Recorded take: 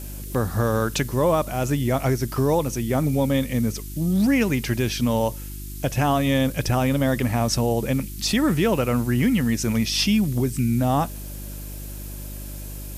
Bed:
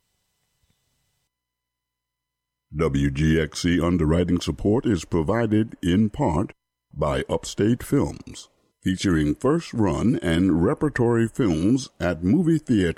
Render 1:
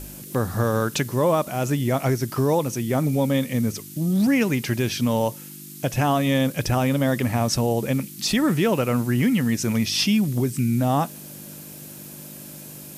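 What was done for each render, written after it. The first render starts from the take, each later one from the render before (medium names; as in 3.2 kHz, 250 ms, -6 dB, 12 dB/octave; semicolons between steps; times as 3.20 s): de-hum 50 Hz, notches 2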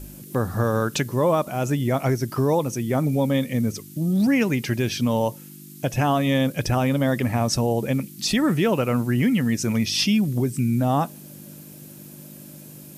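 noise reduction 6 dB, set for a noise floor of -40 dBFS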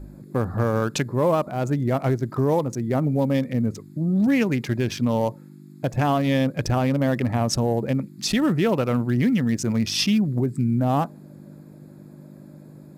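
local Wiener filter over 15 samples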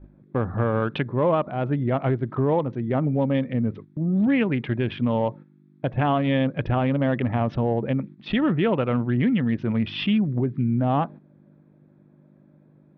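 elliptic low-pass 3.3 kHz, stop band 60 dB; gate -38 dBFS, range -10 dB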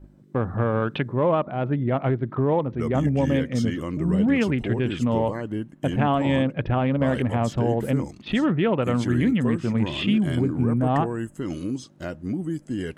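add bed -9 dB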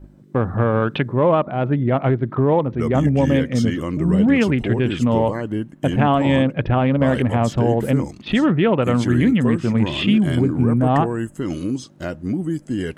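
trim +5 dB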